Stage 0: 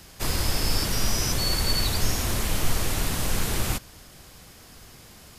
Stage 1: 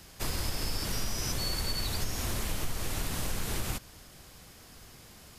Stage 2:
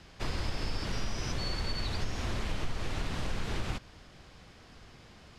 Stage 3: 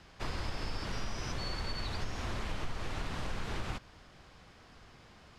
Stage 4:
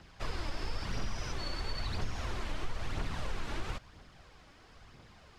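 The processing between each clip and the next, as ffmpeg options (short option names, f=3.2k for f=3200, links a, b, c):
-af "acompressor=threshold=-24dB:ratio=4,volume=-4dB"
-af "lowpass=4k"
-af "equalizer=f=1.1k:t=o:w=1.7:g=4,volume=-4dB"
-af "aphaser=in_gain=1:out_gain=1:delay=3.6:decay=0.4:speed=1:type=triangular,volume=-1.5dB"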